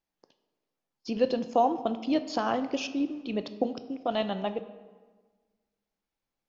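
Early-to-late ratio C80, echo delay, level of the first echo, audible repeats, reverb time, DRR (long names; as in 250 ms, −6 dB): 14.0 dB, no echo audible, no echo audible, no echo audible, 1.4 s, 10.0 dB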